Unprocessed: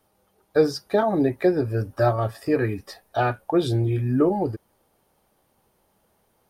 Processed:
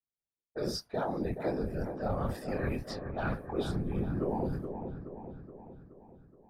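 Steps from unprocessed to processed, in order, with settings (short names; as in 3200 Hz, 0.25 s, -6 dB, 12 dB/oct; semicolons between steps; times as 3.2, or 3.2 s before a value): expander -45 dBFS; chorus voices 4, 0.5 Hz, delay 24 ms, depth 1.1 ms; reverse; compressor 10:1, threshold -30 dBFS, peak gain reduction 16 dB; reverse; low-pass opened by the level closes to 390 Hz, open at -33.5 dBFS; whisperiser; dark delay 0.423 s, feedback 55%, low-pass 1500 Hz, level -7.5 dB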